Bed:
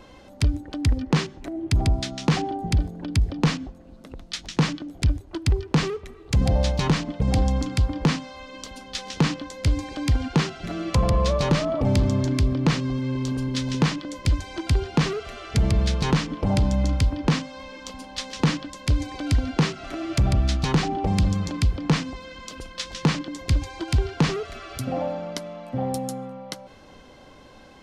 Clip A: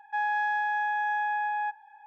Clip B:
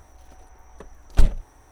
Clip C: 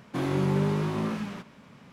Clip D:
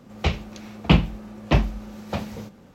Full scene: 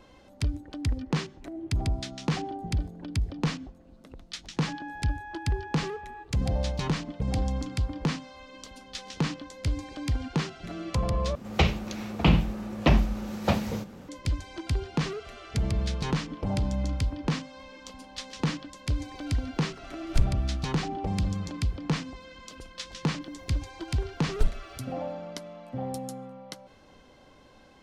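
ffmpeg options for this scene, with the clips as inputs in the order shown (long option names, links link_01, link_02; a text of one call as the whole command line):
ffmpeg -i bed.wav -i cue0.wav -i cue1.wav -i cue2.wav -i cue3.wav -filter_complex "[2:a]asplit=2[link_01][link_02];[0:a]volume=-7dB[link_03];[4:a]alimiter=level_in=13dB:limit=-1dB:release=50:level=0:latency=1[link_04];[link_03]asplit=2[link_05][link_06];[link_05]atrim=end=11.354[link_07];[link_04]atrim=end=2.74,asetpts=PTS-STARTPTS,volume=-9dB[link_08];[link_06]atrim=start=14.086[link_09];[1:a]atrim=end=2.06,asetpts=PTS-STARTPTS,volume=-13.5dB,afade=type=in:duration=0.004:curve=hsin,afade=type=out:start_time=2.056:duration=0.004:curve=hsin,adelay=199773S[link_10];[link_01]atrim=end=1.71,asetpts=PTS-STARTPTS,volume=-10dB,afade=type=in:duration=0.004:curve=hsin,afade=type=out:start_time=1.706:duration=0.004:curve=hsin,adelay=18970[link_11];[link_02]atrim=end=1.71,asetpts=PTS-STARTPTS,volume=-9dB,afade=type=in:duration=0.004:curve=hsin,afade=type=out:start_time=1.706:duration=0.004:curve=hsin,adelay=23220[link_12];[link_07][link_08]acrossfade=duration=0.004:curve1=hsin:curve2=hsin[link_13];[link_13][link_09]acrossfade=duration=0.004:curve1=hsin:curve2=hsin[link_14];[link_14][link_10][link_11][link_12]amix=inputs=4:normalize=0" out.wav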